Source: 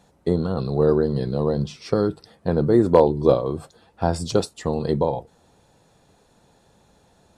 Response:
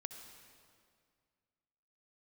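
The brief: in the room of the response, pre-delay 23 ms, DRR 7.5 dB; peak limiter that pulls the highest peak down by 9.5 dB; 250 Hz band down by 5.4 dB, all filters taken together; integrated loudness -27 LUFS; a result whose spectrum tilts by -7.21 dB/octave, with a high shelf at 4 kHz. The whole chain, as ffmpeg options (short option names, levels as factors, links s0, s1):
-filter_complex "[0:a]equalizer=f=250:t=o:g=-8.5,highshelf=f=4000:g=-7,alimiter=limit=0.2:level=0:latency=1,asplit=2[s0][s1];[1:a]atrim=start_sample=2205,adelay=23[s2];[s1][s2]afir=irnorm=-1:irlink=0,volume=0.596[s3];[s0][s3]amix=inputs=2:normalize=0"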